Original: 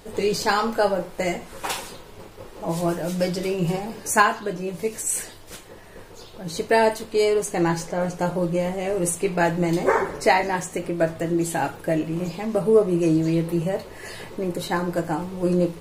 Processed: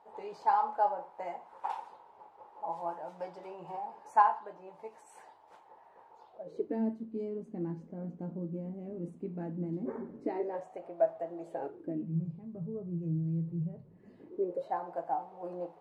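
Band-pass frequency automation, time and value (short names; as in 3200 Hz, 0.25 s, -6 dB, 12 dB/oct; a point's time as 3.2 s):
band-pass, Q 6.8
6.28 s 860 Hz
6.8 s 230 Hz
10.16 s 230 Hz
10.69 s 720 Hz
11.4 s 720 Hz
12.25 s 140 Hz
13.84 s 140 Hz
14.77 s 760 Hz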